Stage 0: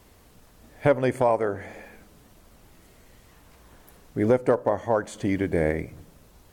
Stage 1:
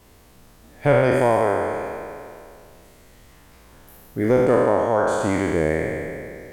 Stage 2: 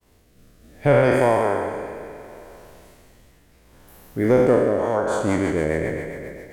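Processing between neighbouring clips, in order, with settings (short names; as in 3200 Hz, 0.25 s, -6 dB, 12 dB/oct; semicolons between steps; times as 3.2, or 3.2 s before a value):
spectral trails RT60 2.44 s
rotary speaker horn 0.65 Hz, later 7.5 Hz, at 4.51; expander -50 dBFS; thinning echo 89 ms, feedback 77%, high-pass 190 Hz, level -14.5 dB; gain +1 dB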